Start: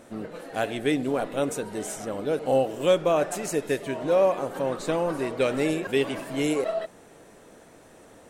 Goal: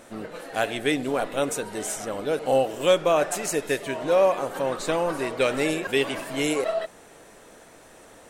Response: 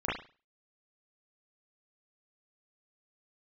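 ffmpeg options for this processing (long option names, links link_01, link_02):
-af "equalizer=frequency=170:width=0.31:gain=-7,volume=5dB"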